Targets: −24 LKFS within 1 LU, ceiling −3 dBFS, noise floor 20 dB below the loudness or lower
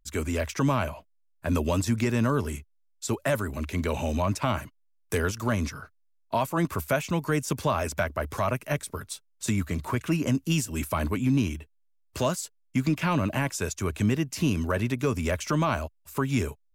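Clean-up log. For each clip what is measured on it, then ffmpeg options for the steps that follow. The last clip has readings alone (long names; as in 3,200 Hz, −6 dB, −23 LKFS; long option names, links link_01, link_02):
integrated loudness −28.0 LKFS; sample peak −15.0 dBFS; target loudness −24.0 LKFS
→ -af "volume=4dB"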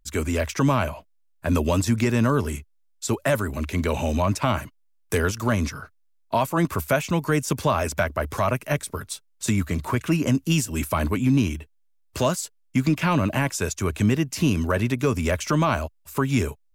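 integrated loudness −24.0 LKFS; sample peak −11.0 dBFS; background noise floor −62 dBFS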